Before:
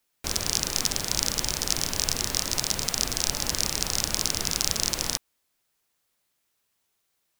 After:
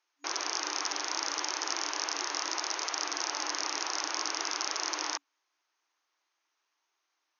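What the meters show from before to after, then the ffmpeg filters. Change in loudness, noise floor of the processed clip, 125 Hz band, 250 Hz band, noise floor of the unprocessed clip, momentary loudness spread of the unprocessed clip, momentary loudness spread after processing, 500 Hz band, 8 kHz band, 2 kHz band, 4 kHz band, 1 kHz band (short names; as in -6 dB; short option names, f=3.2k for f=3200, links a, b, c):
-6.5 dB, -82 dBFS, under -40 dB, -8.5 dB, -75 dBFS, 2 LU, 1 LU, -5.0 dB, -8.0 dB, -0.5 dB, -6.5 dB, +3.0 dB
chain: -af "equalizer=f=500:t=o:w=1:g=-9,equalizer=f=1k:t=o:w=1:g=6,equalizer=f=4k:t=o:w=1:g=-4,aeval=exprs='0.708*(cos(1*acos(clip(val(0)/0.708,-1,1)))-cos(1*PI/2))+0.251*(cos(5*acos(clip(val(0)/0.708,-1,1)))-cos(5*PI/2))':c=same,afftfilt=real='re*between(b*sr/4096,280,6700)':imag='im*between(b*sr/4096,280,6700)':win_size=4096:overlap=0.75,volume=-8.5dB"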